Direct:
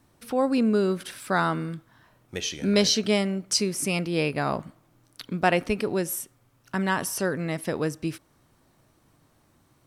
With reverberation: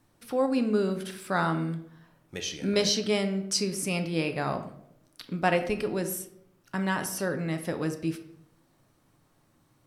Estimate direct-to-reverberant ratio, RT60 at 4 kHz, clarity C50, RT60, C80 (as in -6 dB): 7.0 dB, 0.50 s, 11.0 dB, 0.75 s, 14.5 dB